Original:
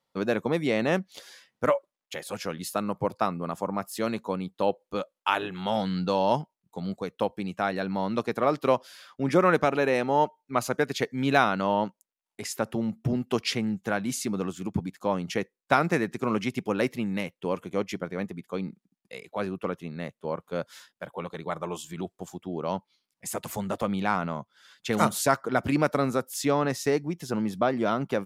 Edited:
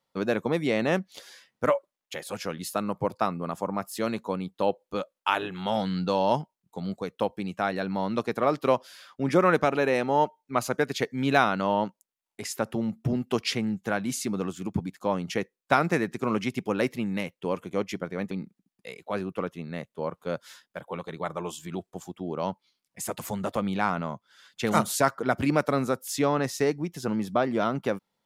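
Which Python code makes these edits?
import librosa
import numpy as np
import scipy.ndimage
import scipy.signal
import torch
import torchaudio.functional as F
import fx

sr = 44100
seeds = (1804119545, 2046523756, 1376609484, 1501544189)

y = fx.edit(x, sr, fx.cut(start_s=18.31, length_s=0.26), tone=tone)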